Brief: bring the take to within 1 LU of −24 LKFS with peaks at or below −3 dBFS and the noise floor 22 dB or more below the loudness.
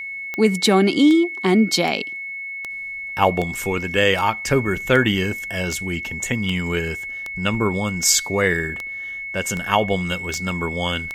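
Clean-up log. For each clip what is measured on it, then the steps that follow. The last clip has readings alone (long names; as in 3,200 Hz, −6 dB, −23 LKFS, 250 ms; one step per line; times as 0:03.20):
number of clicks 15; interfering tone 2,200 Hz; level of the tone −28 dBFS; integrated loudness −20.5 LKFS; sample peak −2.5 dBFS; target loudness −24.0 LKFS
→ click removal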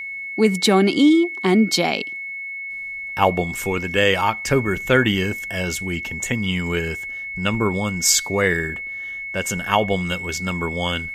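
number of clicks 0; interfering tone 2,200 Hz; level of the tone −28 dBFS
→ notch filter 2,200 Hz, Q 30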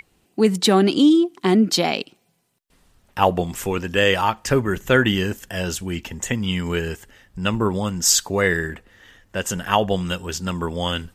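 interfering tone none found; integrated loudness −20.5 LKFS; sample peak −3.0 dBFS; target loudness −24.0 LKFS
→ level −3.5 dB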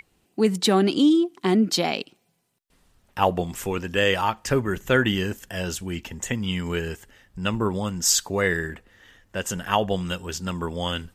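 integrated loudness −24.0 LKFS; sample peak −6.5 dBFS; background noise floor −68 dBFS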